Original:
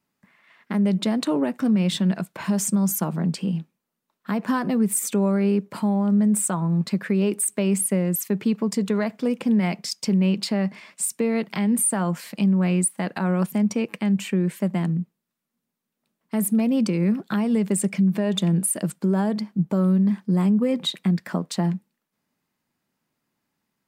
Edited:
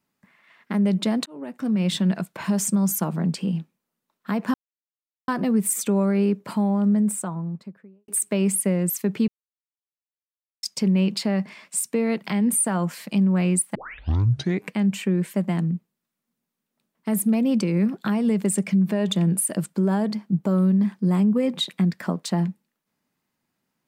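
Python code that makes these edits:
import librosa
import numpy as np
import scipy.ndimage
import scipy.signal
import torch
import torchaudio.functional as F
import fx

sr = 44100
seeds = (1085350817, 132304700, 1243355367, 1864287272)

y = fx.studio_fade_out(x, sr, start_s=5.95, length_s=1.39)
y = fx.edit(y, sr, fx.fade_in_span(start_s=1.26, length_s=0.65),
    fx.insert_silence(at_s=4.54, length_s=0.74),
    fx.silence(start_s=8.54, length_s=1.35),
    fx.tape_start(start_s=13.01, length_s=0.97), tone=tone)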